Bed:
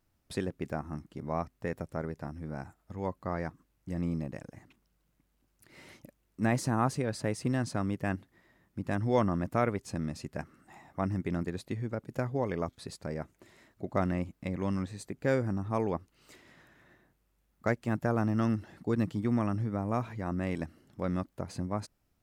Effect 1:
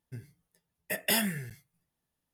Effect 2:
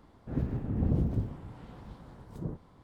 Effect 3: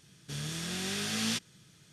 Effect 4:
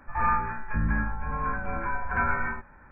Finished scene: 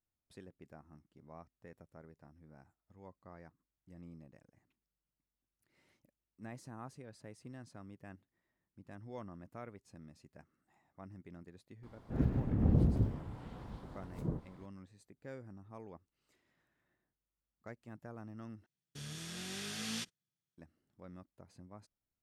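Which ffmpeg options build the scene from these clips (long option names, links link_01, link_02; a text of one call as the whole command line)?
ffmpeg -i bed.wav -i cue0.wav -i cue1.wav -i cue2.wav -filter_complex "[0:a]volume=-20dB[link_01];[3:a]agate=range=-29dB:threshold=-50dB:ratio=16:release=100:detection=peak[link_02];[link_01]asplit=2[link_03][link_04];[link_03]atrim=end=18.664[link_05];[link_02]atrim=end=1.92,asetpts=PTS-STARTPTS,volume=-8.5dB[link_06];[link_04]atrim=start=20.576[link_07];[2:a]atrim=end=2.83,asetpts=PTS-STARTPTS,volume=-0.5dB,afade=type=in:duration=0.004:curve=hsin,afade=type=out:start_time=2.826:duration=0.004:curve=hsin,adelay=11830[link_08];[link_05][link_06]acrossfade=duration=0.004:curve1=hsin:curve2=hsin[link_09];[link_09][link_07]acrossfade=duration=0.004:curve1=hsin:curve2=hsin[link_10];[link_10][link_08]amix=inputs=2:normalize=0" out.wav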